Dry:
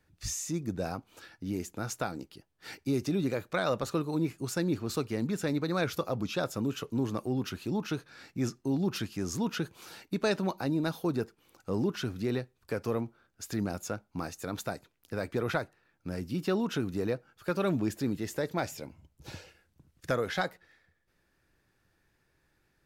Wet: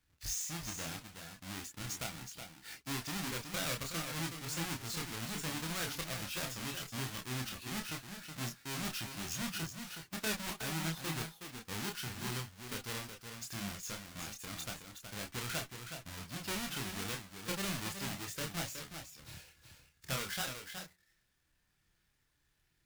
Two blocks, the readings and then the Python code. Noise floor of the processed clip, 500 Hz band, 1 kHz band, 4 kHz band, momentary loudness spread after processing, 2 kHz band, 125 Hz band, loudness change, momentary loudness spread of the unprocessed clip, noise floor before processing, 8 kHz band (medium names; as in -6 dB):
-77 dBFS, -14.5 dB, -6.5 dB, +2.0 dB, 9 LU, -2.0 dB, -7.5 dB, -6.5 dB, 12 LU, -74 dBFS, +2.0 dB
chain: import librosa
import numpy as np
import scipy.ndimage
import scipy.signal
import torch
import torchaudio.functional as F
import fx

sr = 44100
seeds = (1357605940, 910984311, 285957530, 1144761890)

p1 = fx.halfwave_hold(x, sr)
p2 = fx.tone_stack(p1, sr, knobs='5-5-5')
p3 = p2 + fx.echo_single(p2, sr, ms=370, db=-7.5, dry=0)
p4 = fx.chorus_voices(p3, sr, voices=6, hz=0.19, base_ms=28, depth_ms=3.9, mix_pct=40)
y = F.gain(torch.from_numpy(p4), 4.5).numpy()